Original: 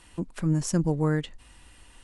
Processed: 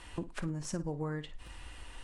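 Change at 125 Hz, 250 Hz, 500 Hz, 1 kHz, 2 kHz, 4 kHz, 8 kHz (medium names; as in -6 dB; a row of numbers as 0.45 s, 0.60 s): -12.5 dB, -12.0 dB, -10.0 dB, -8.0 dB, -6.0 dB, -6.0 dB, -9.5 dB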